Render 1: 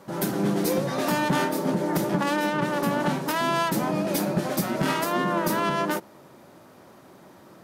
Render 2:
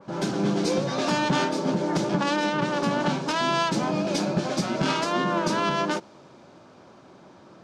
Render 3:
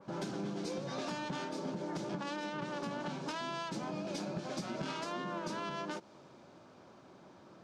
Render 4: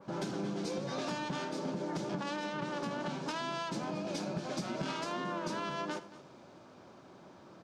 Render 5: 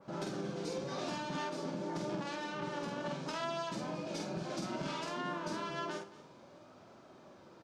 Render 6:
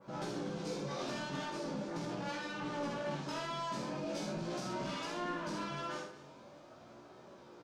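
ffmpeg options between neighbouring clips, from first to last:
ffmpeg -i in.wav -af "lowpass=frequency=6500:width=0.5412,lowpass=frequency=6500:width=1.3066,bandreject=frequency=1900:width=10,adynamicequalizer=threshold=0.0112:dfrequency=2700:dqfactor=0.7:tfrequency=2700:tqfactor=0.7:attack=5:release=100:ratio=0.375:range=2.5:mode=boostabove:tftype=highshelf" out.wav
ffmpeg -i in.wav -af "acompressor=threshold=-29dB:ratio=6,volume=-7dB" out.wav
ffmpeg -i in.wav -af "aecho=1:1:79|225:0.133|0.133,volume=2dB" out.wav
ffmpeg -i in.wav -filter_complex "[0:a]flanger=delay=1.5:depth=2:regen=75:speed=0.29:shape=sinusoidal,asplit=2[link_01][link_02];[link_02]adelay=48,volume=-3.5dB[link_03];[link_01][link_03]amix=inputs=2:normalize=0,volume=1dB" out.wav
ffmpeg -i in.wav -filter_complex "[0:a]flanger=delay=16:depth=5.9:speed=0.41,asoftclip=type=tanh:threshold=-36.5dB,asplit=2[link_01][link_02];[link_02]aecho=0:1:14|79:0.562|0.473[link_03];[link_01][link_03]amix=inputs=2:normalize=0,volume=2.5dB" out.wav

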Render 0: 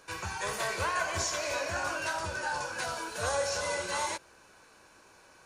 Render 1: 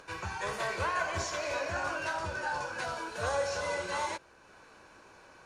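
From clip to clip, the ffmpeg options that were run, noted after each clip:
ffmpeg -i in.wav -af "acompressor=mode=upward:threshold=-48dB:ratio=2.5,aemphasis=mode=reproduction:type=50kf" out.wav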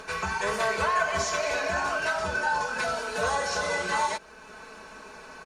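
ffmpeg -i in.wav -af "aecho=1:1:4.6:0.94,acompressor=threshold=-39dB:ratio=1.5,volume=8dB" out.wav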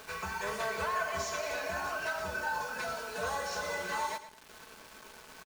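ffmpeg -i in.wav -af "acrusher=bits=6:mix=0:aa=0.000001,aecho=1:1:112|224|336:0.237|0.0711|0.0213,volume=-8dB" out.wav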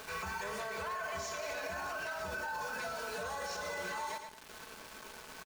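ffmpeg -i in.wav -af "alimiter=level_in=9dB:limit=-24dB:level=0:latency=1:release=50,volume=-9dB,volume=2dB" out.wav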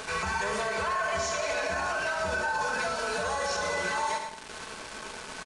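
ffmpeg -i in.wav -af "aecho=1:1:73:0.355,aresample=22050,aresample=44100,volume=9dB" out.wav

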